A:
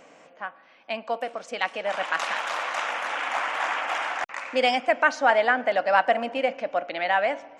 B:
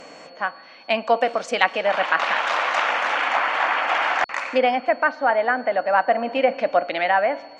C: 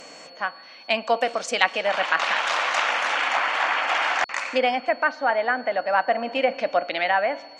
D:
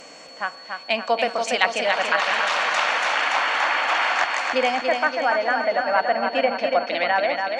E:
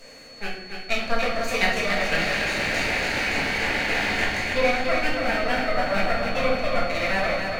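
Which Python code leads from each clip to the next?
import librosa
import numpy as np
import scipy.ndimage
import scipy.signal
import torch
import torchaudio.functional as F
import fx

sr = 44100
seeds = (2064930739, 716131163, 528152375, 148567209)

y1 = fx.env_lowpass_down(x, sr, base_hz=1900.0, full_db=-20.0)
y1 = fx.rider(y1, sr, range_db=10, speed_s=0.5)
y1 = y1 + 10.0 ** (-55.0 / 20.0) * np.sin(2.0 * np.pi * 4400.0 * np.arange(len(y1)) / sr)
y1 = y1 * 10.0 ** (5.0 / 20.0)
y2 = fx.high_shelf(y1, sr, hz=3500.0, db=11.5)
y2 = y2 * 10.0 ** (-3.5 / 20.0)
y3 = fx.echo_feedback(y2, sr, ms=285, feedback_pct=57, wet_db=-5)
y4 = fx.lower_of_two(y3, sr, delay_ms=0.46)
y4 = fx.room_shoebox(y4, sr, seeds[0], volume_m3=160.0, walls='mixed', distance_m=1.6)
y4 = y4 * 10.0 ** (-7.0 / 20.0)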